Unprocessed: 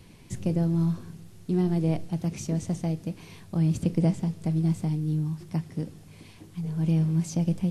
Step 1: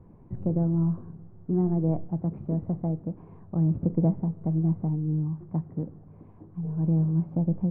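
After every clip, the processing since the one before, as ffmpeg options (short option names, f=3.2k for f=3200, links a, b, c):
-af "lowpass=f=1.1k:w=0.5412,lowpass=f=1.1k:w=1.3066"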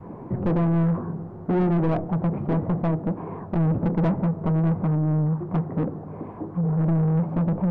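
-filter_complex "[0:a]adynamicequalizer=threshold=0.0112:dfrequency=390:dqfactor=0.95:tfrequency=390:tqfactor=0.95:attack=5:release=100:ratio=0.375:range=2:mode=cutabove:tftype=bell,asplit=2[a][b];[b]highpass=f=720:p=1,volume=32dB,asoftclip=type=tanh:threshold=-14dB[c];[a][c]amix=inputs=2:normalize=0,lowpass=f=1k:p=1,volume=-6dB"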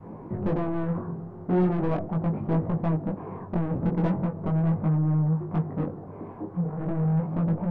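-af "flanger=delay=18.5:depth=4.1:speed=0.39"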